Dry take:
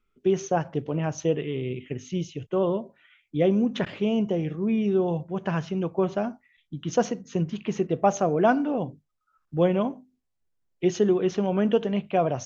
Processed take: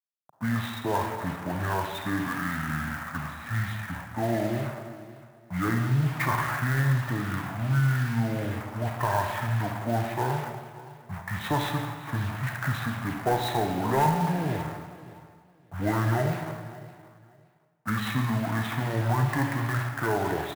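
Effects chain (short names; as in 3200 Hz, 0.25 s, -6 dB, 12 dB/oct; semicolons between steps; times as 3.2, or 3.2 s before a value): in parallel at -1 dB: compressor 12:1, threshold -32 dBFS, peak gain reduction 17.5 dB; on the sum: bit-crush 7-bit; HPF 230 Hz 12 dB/oct; band shelf 530 Hz -15.5 dB; overdrive pedal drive 17 dB, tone 2700 Hz, clips at -14 dBFS; wide varispeed 0.606×; low-pass opened by the level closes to 660 Hz, open at -21.5 dBFS; high shelf 4000 Hz -5.5 dB; feedback echo 0.569 s, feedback 22%, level -18 dB; on a send at -4 dB: reverb RT60 1.5 s, pre-delay 33 ms; on the sum: clock jitter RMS 0.022 ms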